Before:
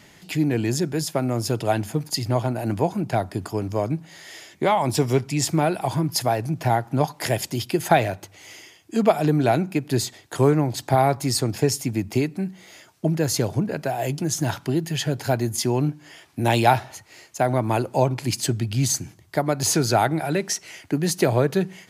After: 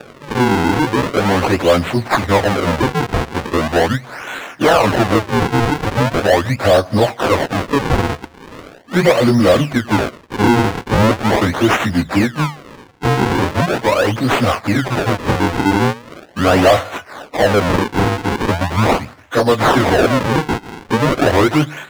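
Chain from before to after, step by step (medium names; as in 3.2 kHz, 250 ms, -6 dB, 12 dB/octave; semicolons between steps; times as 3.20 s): frequency-domain pitch shifter -4 st; high-pass 73 Hz 24 dB/octave; peaking EQ 11 kHz +6.5 dB 0.85 oct; in parallel at +2 dB: peak limiter -15 dBFS, peak gain reduction 9.5 dB; on the sum: decimation with a swept rate 42×, swing 160% 0.4 Hz; overdrive pedal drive 17 dB, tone 2.4 kHz, clips at -3 dBFS; trim +2 dB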